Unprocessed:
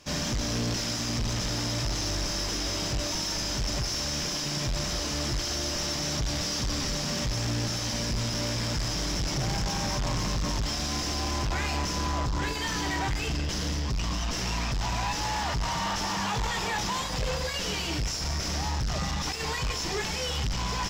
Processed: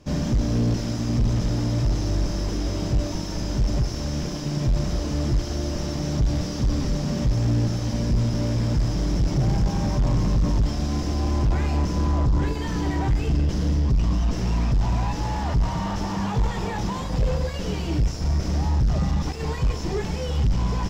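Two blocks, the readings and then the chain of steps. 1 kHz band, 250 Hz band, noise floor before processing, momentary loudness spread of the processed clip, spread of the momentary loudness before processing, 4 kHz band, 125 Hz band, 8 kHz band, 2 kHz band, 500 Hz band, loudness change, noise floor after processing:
-0.5 dB, +8.0 dB, -32 dBFS, 5 LU, 1 LU, -7.5 dB, +9.5 dB, -7.5 dB, -5.0 dB, +4.5 dB, +4.5 dB, -29 dBFS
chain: tilt shelf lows +9 dB, about 770 Hz; trim +1 dB

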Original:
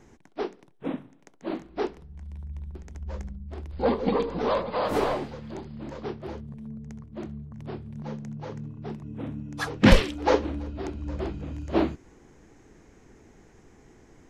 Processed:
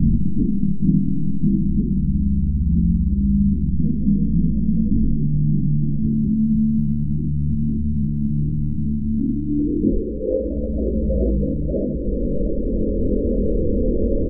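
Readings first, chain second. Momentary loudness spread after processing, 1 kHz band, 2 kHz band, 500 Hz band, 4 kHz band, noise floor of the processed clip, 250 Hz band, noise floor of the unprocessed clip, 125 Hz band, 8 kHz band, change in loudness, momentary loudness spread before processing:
5 LU, under -30 dB, under -40 dB, +3.0 dB, under -40 dB, -23 dBFS, +12.5 dB, -56 dBFS, +14.5 dB, under -30 dB, +8.5 dB, 15 LU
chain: spectral levelling over time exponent 0.4; peaking EQ 110 Hz -7 dB 0.25 oct; on a send: delay 656 ms -19.5 dB; on the sum: compression 2.5:1, threshold -23 dBFS, peak gain reduction 10.5 dB; low-pass sweep 190 Hz -> 590 Hz, 8.94–10.47 s; gain riding 0.5 s; steep low-pass 870 Hz 48 dB/octave; loudest bins only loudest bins 16; bass shelf 460 Hz +9 dB; chorus voices 2, 0.18 Hz, delay 22 ms, depth 3.4 ms

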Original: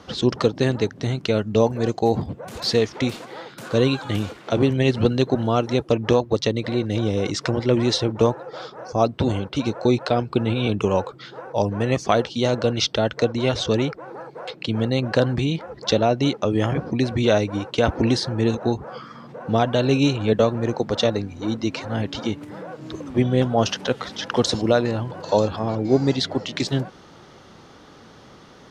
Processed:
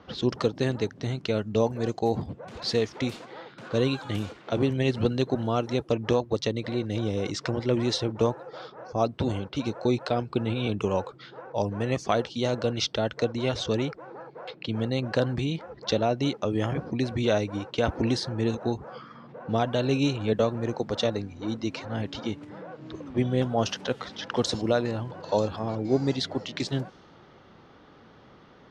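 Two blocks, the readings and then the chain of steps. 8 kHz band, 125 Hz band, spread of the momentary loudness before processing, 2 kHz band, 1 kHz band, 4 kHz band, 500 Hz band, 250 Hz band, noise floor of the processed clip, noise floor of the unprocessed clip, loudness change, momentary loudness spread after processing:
-6.5 dB, -6.0 dB, 9 LU, -6.0 dB, -6.0 dB, -6.0 dB, -6.0 dB, -6.0 dB, -53 dBFS, -47 dBFS, -6.0 dB, 9 LU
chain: level-controlled noise filter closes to 3 kHz, open at -17.5 dBFS; trim -6 dB

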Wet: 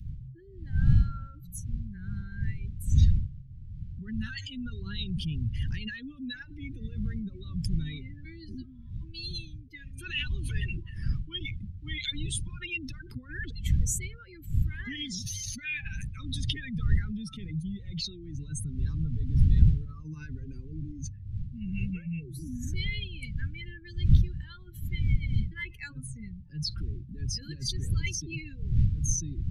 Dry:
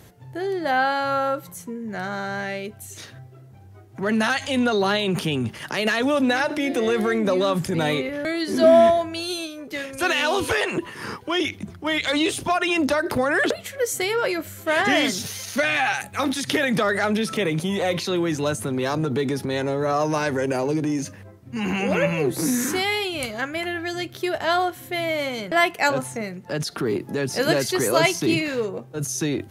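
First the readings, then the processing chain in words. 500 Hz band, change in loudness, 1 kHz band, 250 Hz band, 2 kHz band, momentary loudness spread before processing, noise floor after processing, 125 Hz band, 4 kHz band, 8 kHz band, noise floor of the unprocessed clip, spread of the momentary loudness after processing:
-33.5 dB, -9.5 dB, -33.5 dB, -13.5 dB, -16.5 dB, 10 LU, -47 dBFS, +3.5 dB, -10.5 dB, -7.0 dB, -45 dBFS, 16 LU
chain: spectral contrast enhancement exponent 2.3; wind noise 120 Hz -27 dBFS; Chebyshev band-stop 120–3600 Hz, order 2; trim -2 dB

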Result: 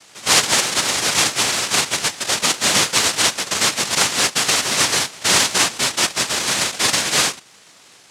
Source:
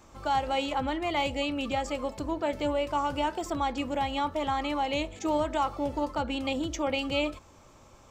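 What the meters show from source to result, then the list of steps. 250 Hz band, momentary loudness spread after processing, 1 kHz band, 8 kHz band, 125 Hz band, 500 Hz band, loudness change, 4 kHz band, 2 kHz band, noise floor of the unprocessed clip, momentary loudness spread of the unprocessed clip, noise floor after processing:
+0.5 dB, 4 LU, +4.5 dB, +31.0 dB, +7.5 dB, +2.5 dB, +14.0 dB, +20.0 dB, +17.0 dB, -55 dBFS, 3 LU, -48 dBFS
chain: high-pass 230 Hz; harmonic-percussive split harmonic +8 dB; noise-vocoded speech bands 1; trim +4 dB

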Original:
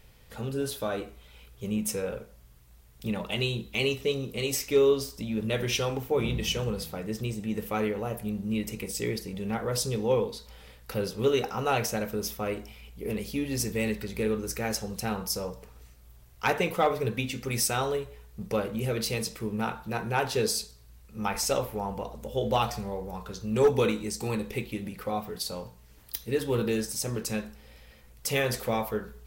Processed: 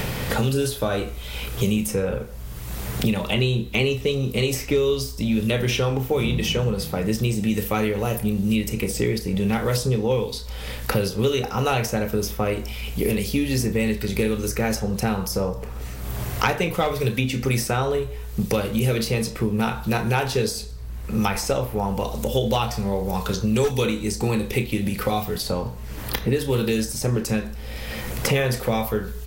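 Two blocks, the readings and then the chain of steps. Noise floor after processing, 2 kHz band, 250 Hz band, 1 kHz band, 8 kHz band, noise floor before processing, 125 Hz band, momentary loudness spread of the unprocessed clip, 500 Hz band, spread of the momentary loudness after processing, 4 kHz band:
-34 dBFS, +6.5 dB, +8.5 dB, +4.5 dB, +3.0 dB, -54 dBFS, +10.5 dB, 10 LU, +4.5 dB, 8 LU, +5.5 dB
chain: bass shelf 150 Hz +7.5 dB; doubling 31 ms -11 dB; three bands compressed up and down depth 100%; trim +4.5 dB

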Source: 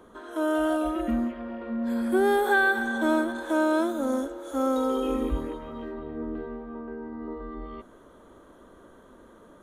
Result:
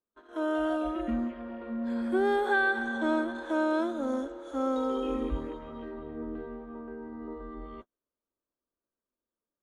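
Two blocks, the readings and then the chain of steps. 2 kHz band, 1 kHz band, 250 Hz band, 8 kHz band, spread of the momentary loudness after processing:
-4.0 dB, -4.0 dB, -4.0 dB, under -10 dB, 15 LU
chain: gate -40 dBFS, range -39 dB; low-pass 5.5 kHz 12 dB/octave; trim -4 dB

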